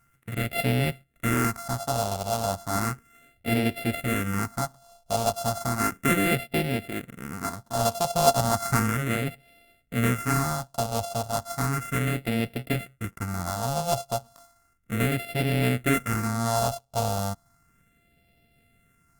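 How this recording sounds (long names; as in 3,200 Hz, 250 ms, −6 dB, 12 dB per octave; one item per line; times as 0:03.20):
a buzz of ramps at a fixed pitch in blocks of 64 samples
phaser sweep stages 4, 0.34 Hz, lowest notch 320–1,100 Hz
Opus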